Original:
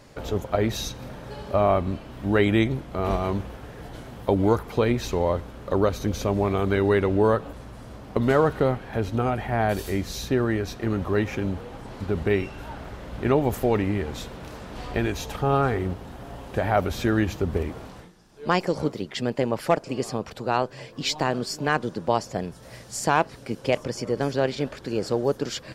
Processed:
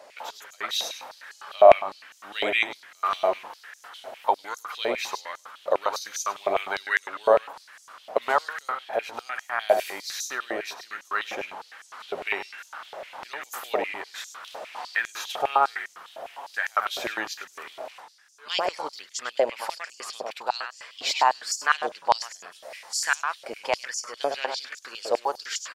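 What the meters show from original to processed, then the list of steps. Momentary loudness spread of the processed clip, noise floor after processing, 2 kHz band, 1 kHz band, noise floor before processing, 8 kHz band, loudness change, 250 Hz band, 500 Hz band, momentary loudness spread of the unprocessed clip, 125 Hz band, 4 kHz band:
17 LU, −55 dBFS, +3.0 dB, +1.5 dB, −45 dBFS, +4.0 dB, −1.5 dB, −19.5 dB, −2.5 dB, 16 LU, below −30 dB, +3.0 dB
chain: single-tap delay 101 ms −10 dB
high-pass on a step sequencer 9.9 Hz 640–6,400 Hz
level −1 dB

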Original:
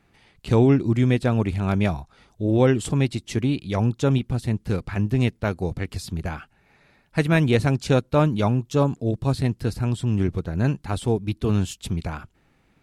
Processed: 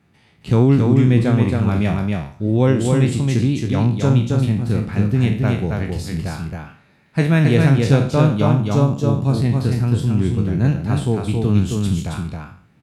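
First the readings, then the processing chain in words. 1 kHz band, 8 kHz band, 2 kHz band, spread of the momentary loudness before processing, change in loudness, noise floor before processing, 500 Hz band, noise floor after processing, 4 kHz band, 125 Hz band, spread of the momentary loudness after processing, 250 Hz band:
+2.5 dB, +3.0 dB, +2.5 dB, 10 LU, +5.5 dB, −63 dBFS, +2.5 dB, −55 dBFS, +2.5 dB, +7.0 dB, 11 LU, +5.5 dB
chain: peak hold with a decay on every bin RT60 0.47 s
high-pass filter 110 Hz
bass and treble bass +9 dB, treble 0 dB
on a send: single-tap delay 271 ms −3.5 dB
on the sum: level −1.5 dB

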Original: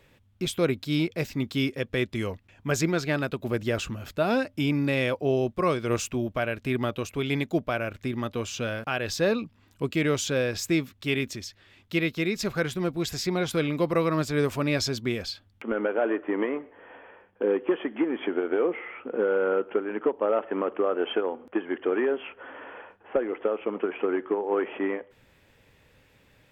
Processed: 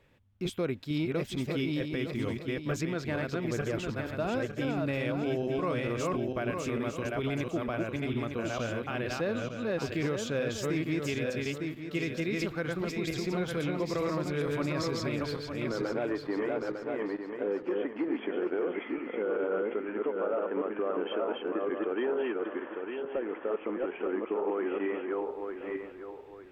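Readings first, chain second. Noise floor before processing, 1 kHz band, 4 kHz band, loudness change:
−61 dBFS, −4.5 dB, −7.0 dB, −5.0 dB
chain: feedback delay that plays each chunk backwards 452 ms, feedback 53%, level −2 dB
high-shelf EQ 3,800 Hz −8 dB
brickwall limiter −17.5 dBFS, peak gain reduction 7.5 dB
level −5 dB

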